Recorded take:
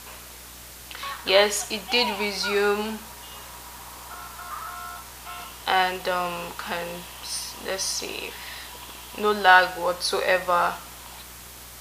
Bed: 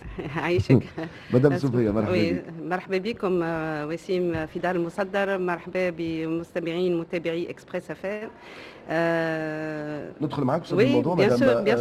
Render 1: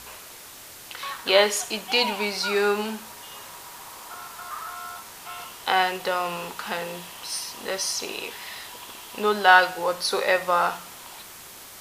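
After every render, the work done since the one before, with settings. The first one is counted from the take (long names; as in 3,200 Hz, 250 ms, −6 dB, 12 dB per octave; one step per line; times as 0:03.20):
hum removal 60 Hz, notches 5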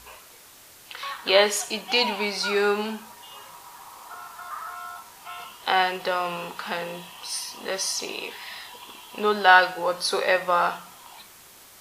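noise reduction from a noise print 6 dB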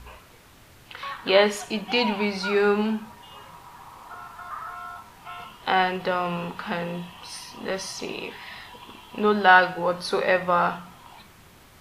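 bass and treble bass +13 dB, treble −10 dB
mains-hum notches 50/100/150/200 Hz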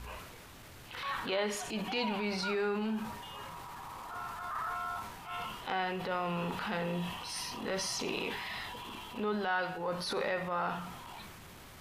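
downward compressor 6 to 1, threshold −30 dBFS, peak gain reduction 18.5 dB
transient designer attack −9 dB, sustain +5 dB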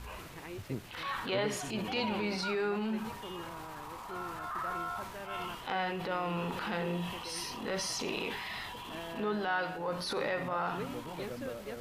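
mix in bed −21 dB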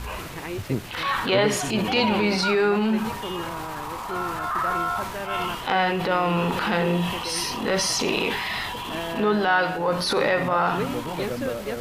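level +12 dB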